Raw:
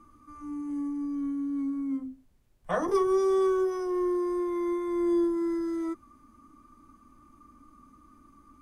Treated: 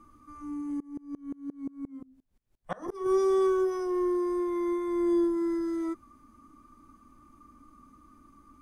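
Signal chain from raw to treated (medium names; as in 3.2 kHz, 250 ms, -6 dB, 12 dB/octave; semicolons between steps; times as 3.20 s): 0.80–3.06 s: sawtooth tremolo in dB swelling 5.7 Hz, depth 28 dB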